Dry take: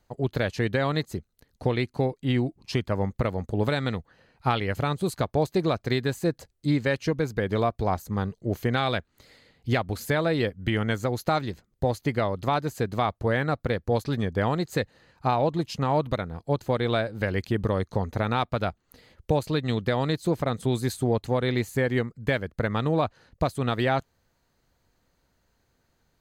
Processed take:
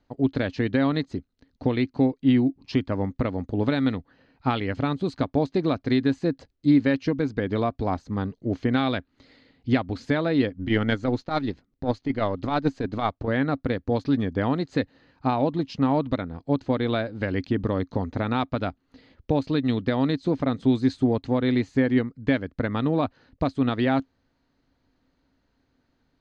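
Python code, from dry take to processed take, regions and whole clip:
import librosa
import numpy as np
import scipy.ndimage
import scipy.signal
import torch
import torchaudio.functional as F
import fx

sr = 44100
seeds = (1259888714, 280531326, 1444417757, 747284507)

y = fx.chain(x, sr, fx.halfwave_gain(db=-3.0),
    fx.transient(attack_db=11, sustain_db=-5),
    fx.over_compress(threshold_db=-24.0, ratio=-1.0), at=(10.57, 13.28))
y = scipy.signal.sosfilt(scipy.signal.butter(4, 5100.0, 'lowpass', fs=sr, output='sos'), y)
y = fx.peak_eq(y, sr, hz=270.0, db=14.0, octaves=0.32)
y = F.gain(torch.from_numpy(y), -1.5).numpy()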